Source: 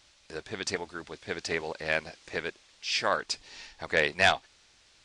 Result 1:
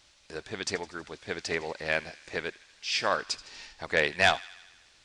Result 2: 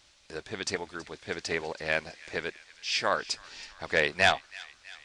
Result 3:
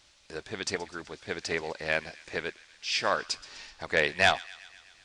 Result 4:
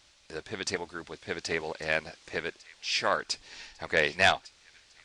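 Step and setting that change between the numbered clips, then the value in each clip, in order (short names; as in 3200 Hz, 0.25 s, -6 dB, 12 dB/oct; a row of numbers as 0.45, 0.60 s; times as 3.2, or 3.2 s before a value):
thin delay, time: 80, 325, 126, 1151 ms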